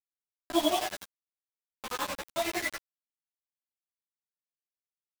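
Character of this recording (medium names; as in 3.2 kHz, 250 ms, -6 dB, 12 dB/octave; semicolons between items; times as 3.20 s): tremolo triangle 11 Hz, depth 90%; phasing stages 12, 0.59 Hz, lowest notch 680–2200 Hz; a quantiser's noise floor 6-bit, dither none; a shimmering, thickened sound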